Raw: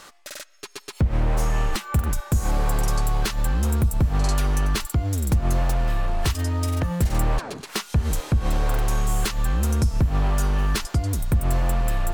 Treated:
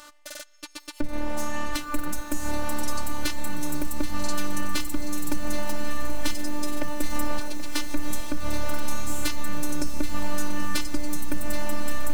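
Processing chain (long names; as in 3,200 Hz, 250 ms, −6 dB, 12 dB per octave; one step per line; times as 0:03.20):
phases set to zero 296 Hz
on a send: feedback delay with all-pass diffusion 1,021 ms, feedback 64%, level −12 dB
on the sum: feedback echo at a low word length 780 ms, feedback 55%, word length 6 bits, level −12 dB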